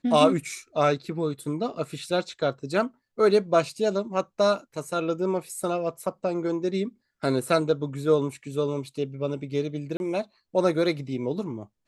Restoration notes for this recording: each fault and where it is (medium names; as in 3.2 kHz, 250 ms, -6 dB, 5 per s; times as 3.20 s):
9.97–10.00 s: dropout 31 ms